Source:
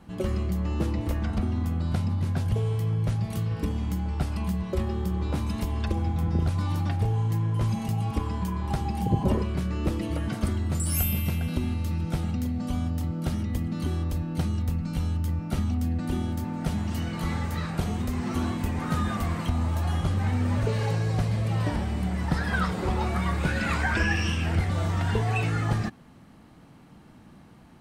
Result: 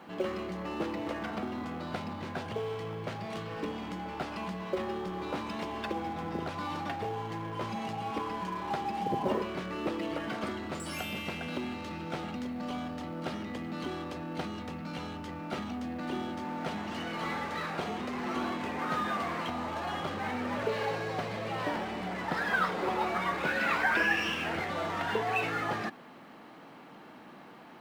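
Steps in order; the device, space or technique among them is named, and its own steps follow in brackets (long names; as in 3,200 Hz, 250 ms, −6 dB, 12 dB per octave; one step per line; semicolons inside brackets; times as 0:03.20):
phone line with mismatched companding (band-pass filter 380–3,500 Hz; mu-law and A-law mismatch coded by mu)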